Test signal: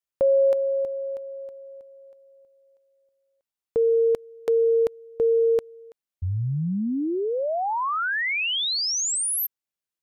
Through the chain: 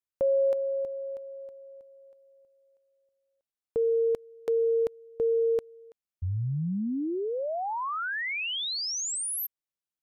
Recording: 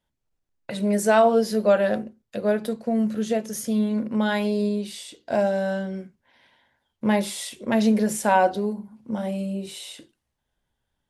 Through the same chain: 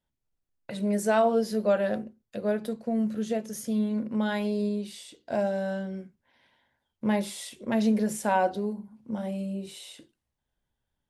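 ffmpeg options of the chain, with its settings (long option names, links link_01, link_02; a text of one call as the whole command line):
ffmpeg -i in.wav -af "lowshelf=frequency=410:gain=3,volume=-6.5dB" out.wav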